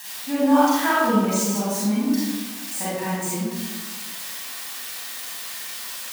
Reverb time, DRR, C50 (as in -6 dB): 1.4 s, -8.5 dB, -4.0 dB